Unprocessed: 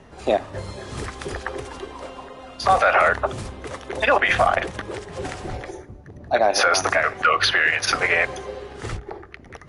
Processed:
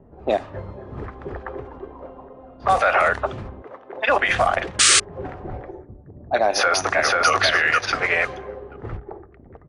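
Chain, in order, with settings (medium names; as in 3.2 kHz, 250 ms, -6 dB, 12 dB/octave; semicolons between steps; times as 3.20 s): 3.62–4.09 s: frequency weighting A; level-controlled noise filter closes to 560 Hz, open at -14 dBFS; 4.79–5.00 s: painted sound noise 1.1–9.6 kHz -13 dBFS; 6.48–7.29 s: echo throw 490 ms, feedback 20%, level -1.5 dB; trim -1 dB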